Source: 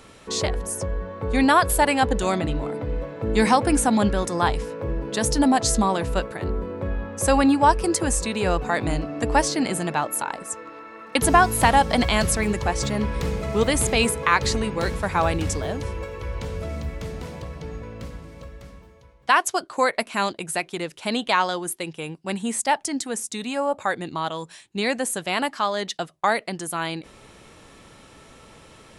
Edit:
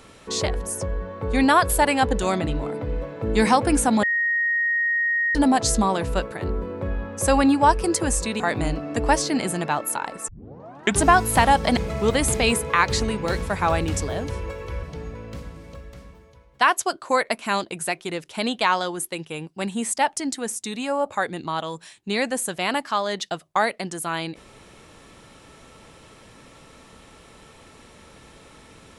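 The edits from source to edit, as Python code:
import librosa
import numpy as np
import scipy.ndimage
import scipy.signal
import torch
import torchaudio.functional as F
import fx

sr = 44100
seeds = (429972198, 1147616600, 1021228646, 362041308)

y = fx.edit(x, sr, fx.bleep(start_s=4.03, length_s=1.32, hz=1870.0, db=-19.0),
    fx.cut(start_s=8.4, length_s=0.26),
    fx.tape_start(start_s=10.54, length_s=0.77),
    fx.cut(start_s=12.03, length_s=1.27),
    fx.cut(start_s=16.36, length_s=1.15), tone=tone)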